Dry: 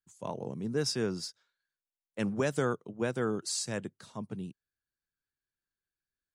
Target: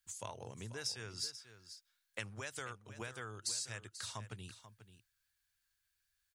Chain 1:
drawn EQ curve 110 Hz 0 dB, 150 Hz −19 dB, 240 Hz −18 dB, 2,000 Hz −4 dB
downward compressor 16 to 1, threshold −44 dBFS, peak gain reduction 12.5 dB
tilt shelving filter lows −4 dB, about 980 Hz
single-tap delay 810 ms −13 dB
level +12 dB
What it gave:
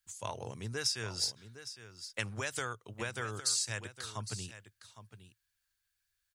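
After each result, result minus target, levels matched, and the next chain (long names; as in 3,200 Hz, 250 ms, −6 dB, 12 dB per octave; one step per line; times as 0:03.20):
echo 322 ms late; downward compressor: peak gain reduction −7.5 dB
drawn EQ curve 110 Hz 0 dB, 150 Hz −19 dB, 240 Hz −18 dB, 2,000 Hz −4 dB
downward compressor 16 to 1, threshold −44 dBFS, peak gain reduction 12.5 dB
tilt shelving filter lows −4 dB, about 980 Hz
single-tap delay 488 ms −13 dB
level +12 dB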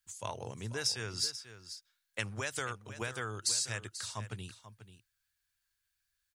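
downward compressor: peak gain reduction −7.5 dB
drawn EQ curve 110 Hz 0 dB, 150 Hz −19 dB, 240 Hz −18 dB, 2,000 Hz −4 dB
downward compressor 16 to 1, threshold −52 dBFS, peak gain reduction 20 dB
tilt shelving filter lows −4 dB, about 980 Hz
single-tap delay 488 ms −13 dB
level +12 dB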